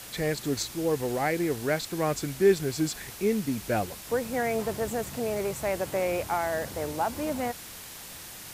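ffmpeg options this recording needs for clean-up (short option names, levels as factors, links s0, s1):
-af "afftdn=nr=30:nf=-43"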